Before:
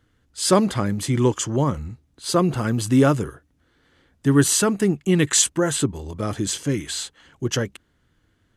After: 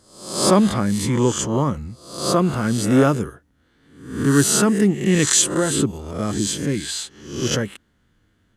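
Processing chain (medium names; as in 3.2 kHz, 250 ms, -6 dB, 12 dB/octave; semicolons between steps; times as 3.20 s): reverse spectral sustain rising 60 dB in 0.62 s; peaking EQ 210 Hz +6 dB 0.32 oct; trim -1 dB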